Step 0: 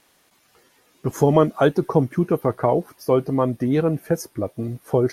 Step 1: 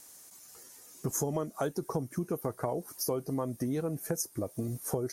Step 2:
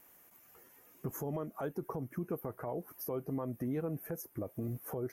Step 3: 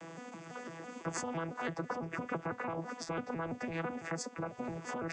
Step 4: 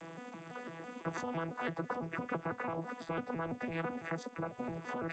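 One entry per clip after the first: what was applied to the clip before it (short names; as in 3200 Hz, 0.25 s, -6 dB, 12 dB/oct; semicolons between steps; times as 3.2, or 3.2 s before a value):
resonant high shelf 4700 Hz +13 dB, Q 1.5; compressor 5:1, threshold -28 dBFS, peak gain reduction 16 dB; gain -2.5 dB
band shelf 6100 Hz -16 dB; limiter -25.5 dBFS, peak gain reduction 8 dB; gain -2.5 dB
arpeggiated vocoder bare fifth, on E3, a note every 0.167 s; spectral compressor 4:1; gain +1.5 dB
gain +1 dB; G.722 64 kbps 16000 Hz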